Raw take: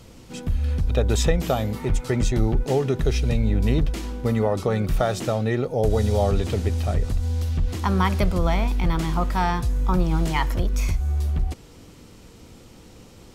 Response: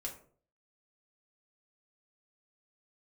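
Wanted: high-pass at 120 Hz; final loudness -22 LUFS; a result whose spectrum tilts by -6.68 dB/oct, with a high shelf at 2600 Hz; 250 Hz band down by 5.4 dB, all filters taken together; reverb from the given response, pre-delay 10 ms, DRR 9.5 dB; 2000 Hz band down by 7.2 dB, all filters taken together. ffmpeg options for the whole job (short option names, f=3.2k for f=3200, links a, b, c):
-filter_complex "[0:a]highpass=120,equalizer=f=250:t=o:g=-7,equalizer=f=2k:t=o:g=-6,highshelf=f=2.6k:g=-6.5,asplit=2[a][b];[1:a]atrim=start_sample=2205,adelay=10[c];[b][c]afir=irnorm=-1:irlink=0,volume=-8dB[d];[a][d]amix=inputs=2:normalize=0,volume=6dB"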